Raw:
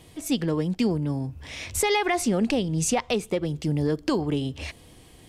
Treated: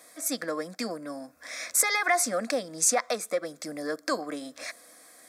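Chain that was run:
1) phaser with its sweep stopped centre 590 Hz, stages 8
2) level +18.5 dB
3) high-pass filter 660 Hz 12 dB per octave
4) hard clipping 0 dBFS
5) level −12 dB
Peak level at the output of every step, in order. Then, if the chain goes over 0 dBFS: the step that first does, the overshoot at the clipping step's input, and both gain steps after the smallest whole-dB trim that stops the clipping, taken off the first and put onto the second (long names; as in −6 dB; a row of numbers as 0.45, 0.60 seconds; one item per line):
−13.5, +5.0, +5.5, 0.0, −12.0 dBFS
step 2, 5.5 dB
step 2 +12.5 dB, step 5 −6 dB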